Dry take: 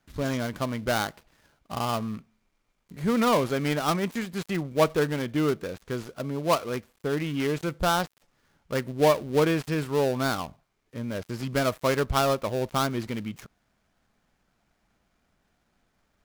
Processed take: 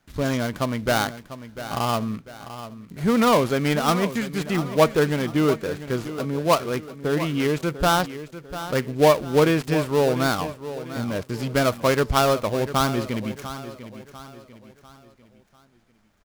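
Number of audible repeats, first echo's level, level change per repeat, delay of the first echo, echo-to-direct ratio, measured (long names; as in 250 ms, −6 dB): 3, −13.0 dB, −8.0 dB, 696 ms, −12.0 dB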